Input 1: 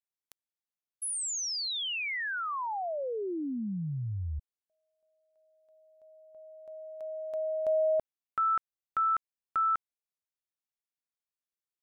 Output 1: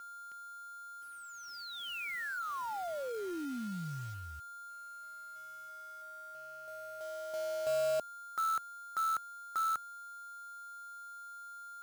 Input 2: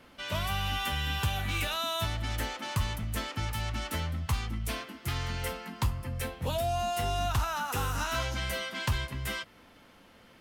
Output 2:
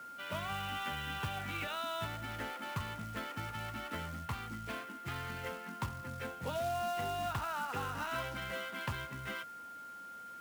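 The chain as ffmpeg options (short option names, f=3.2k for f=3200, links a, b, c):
-af "aeval=exprs='val(0)+0.00891*sin(2*PI*1400*n/s)':c=same,highpass=130,lowpass=2.7k,acrusher=bits=3:mode=log:mix=0:aa=0.000001,volume=-5dB"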